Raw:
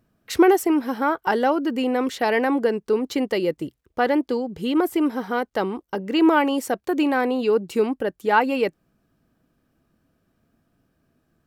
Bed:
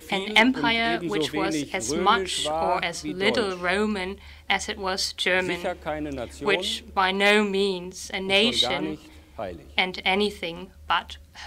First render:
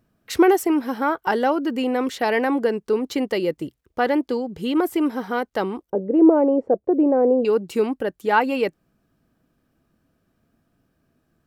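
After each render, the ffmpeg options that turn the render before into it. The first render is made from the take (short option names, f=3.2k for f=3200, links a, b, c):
-filter_complex "[0:a]asettb=1/sr,asplit=3[a][b][c];[a]atrim=end=5.904[d];[b]atrim=start=5.9:end=7.45,asetpts=PTS-STARTPTS,afade=t=in:d=0.004:c=qsin,afade=t=out:st=1.546:d=0.004:c=qsin,lowpass=f=530:t=q:w=2.6[e];[c]atrim=start=7.446[f];[d][e]acrossfade=d=0.004:c1=hsin:c2=qsin[g];[g][f]acrossfade=d=0.004:c1=qsin:c2=hsin"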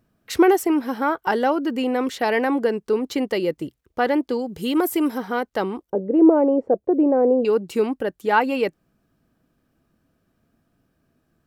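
-filter_complex "[0:a]asettb=1/sr,asplit=3[a][b][c];[a]atrim=end=4.394[d];[b]atrim=start=4.39:end=5.18,asetpts=PTS-STARTPTS,afade=t=in:d=0.004:c=qsin,afade=t=out:st=0.786:d=0.004:c=qsin,highshelf=f=5.8k:g=11[e];[c]atrim=start=5.176[f];[d][e]acrossfade=d=0.004:c1=hsin:c2=qsin[g];[g][f]acrossfade=d=0.004:c1=qsin:c2=hsin"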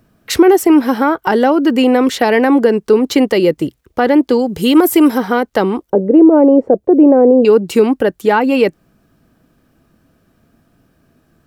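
-filter_complex "[0:a]acrossover=split=410[a][b];[b]acompressor=threshold=-25dB:ratio=3[c];[a][c]amix=inputs=2:normalize=0,alimiter=level_in=12dB:limit=-1dB:release=50:level=0:latency=1"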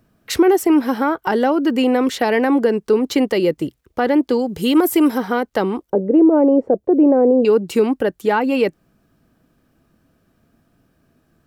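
-af "volume=-5dB"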